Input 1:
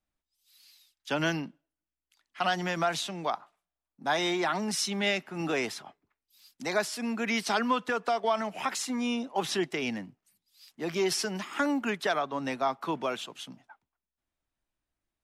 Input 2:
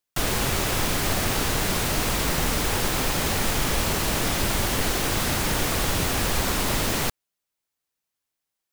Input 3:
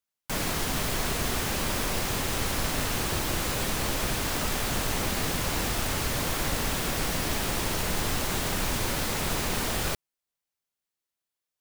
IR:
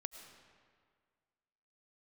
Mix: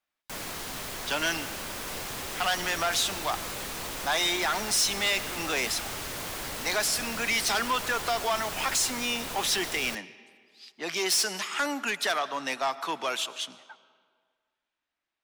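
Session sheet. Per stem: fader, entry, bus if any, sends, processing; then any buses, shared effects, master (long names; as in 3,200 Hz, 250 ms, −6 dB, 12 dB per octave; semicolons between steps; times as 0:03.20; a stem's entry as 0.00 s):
+1.5 dB, 0.00 s, send −4.5 dB, spectral tilt +3 dB per octave; low-pass that shuts in the quiet parts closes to 3,000 Hz, open at −28 dBFS
−16.0 dB, 1.70 s, no send, no processing
−6.0 dB, 0.00 s, no send, no processing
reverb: on, RT60 1.9 s, pre-delay 65 ms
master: soft clipping −20.5 dBFS, distortion −11 dB; low-shelf EQ 260 Hz −9 dB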